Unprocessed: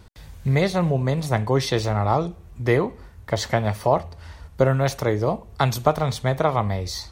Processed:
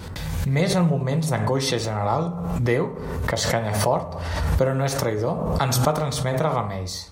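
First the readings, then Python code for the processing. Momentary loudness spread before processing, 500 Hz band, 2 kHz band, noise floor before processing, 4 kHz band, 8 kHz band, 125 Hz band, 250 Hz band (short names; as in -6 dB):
9 LU, -1.0 dB, 0.0 dB, -46 dBFS, +2.5 dB, +6.0 dB, 0.0 dB, +1.0 dB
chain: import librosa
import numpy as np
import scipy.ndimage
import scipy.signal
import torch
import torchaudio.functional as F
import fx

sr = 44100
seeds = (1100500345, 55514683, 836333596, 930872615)

y = scipy.signal.sosfilt(scipy.signal.butter(2, 59.0, 'highpass', fs=sr, output='sos'), x)
y = fx.dynamic_eq(y, sr, hz=8500.0, q=1.0, threshold_db=-48.0, ratio=4.0, max_db=6)
y = fx.rev_fdn(y, sr, rt60_s=0.73, lf_ratio=1.0, hf_ratio=0.35, size_ms=35.0, drr_db=6.5)
y = fx.pre_swell(y, sr, db_per_s=31.0)
y = y * librosa.db_to_amplitude(-3.5)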